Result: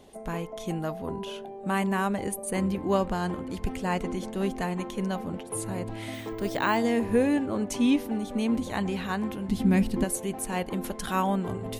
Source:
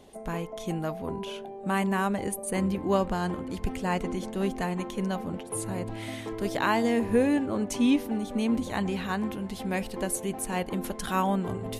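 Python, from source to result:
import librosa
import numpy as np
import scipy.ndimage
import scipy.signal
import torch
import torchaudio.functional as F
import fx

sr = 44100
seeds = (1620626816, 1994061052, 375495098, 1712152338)

y = fx.notch(x, sr, hz=2300.0, q=9.8, at=(0.8, 1.44))
y = fx.resample_bad(y, sr, factor=2, down='filtered', up='hold', at=(6.14, 6.77))
y = fx.low_shelf_res(y, sr, hz=370.0, db=9.0, q=1.5, at=(9.48, 10.04))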